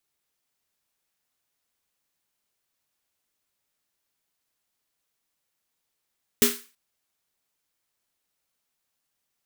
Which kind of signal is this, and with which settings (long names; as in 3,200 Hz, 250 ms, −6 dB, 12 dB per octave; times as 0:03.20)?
synth snare length 0.33 s, tones 240 Hz, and 410 Hz, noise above 1,200 Hz, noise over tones 1.5 dB, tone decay 0.26 s, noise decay 0.36 s